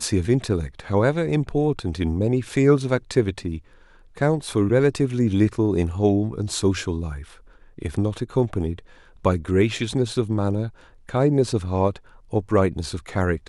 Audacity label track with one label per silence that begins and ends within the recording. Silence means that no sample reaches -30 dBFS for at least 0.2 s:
3.580000	4.170000	silence
7.220000	7.790000	silence
8.790000	9.250000	silence
10.680000	11.090000	silence
11.960000	12.330000	silence